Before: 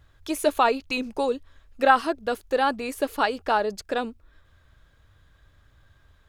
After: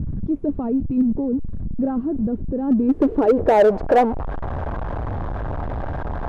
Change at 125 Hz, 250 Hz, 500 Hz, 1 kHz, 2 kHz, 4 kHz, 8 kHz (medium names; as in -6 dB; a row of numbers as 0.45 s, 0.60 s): no reading, +13.0 dB, +6.5 dB, 0.0 dB, -6.5 dB, under -10 dB, under -10 dB